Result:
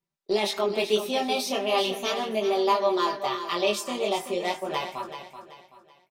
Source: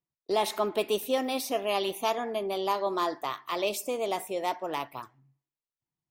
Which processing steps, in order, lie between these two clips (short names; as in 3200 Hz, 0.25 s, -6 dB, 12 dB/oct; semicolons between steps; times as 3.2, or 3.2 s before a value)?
high shelf 9400 Hz -10.5 dB; comb 5.1 ms, depth 96%; dynamic EQ 4500 Hz, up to +6 dB, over -46 dBFS, Q 0.78; in parallel at 0 dB: compressor, threshold -32 dBFS, peak gain reduction 14.5 dB; on the sum: chorus 0.38 Hz, delay 18 ms, depth 6.3 ms; on a send: feedback echo 0.381 s, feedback 36%, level -10 dB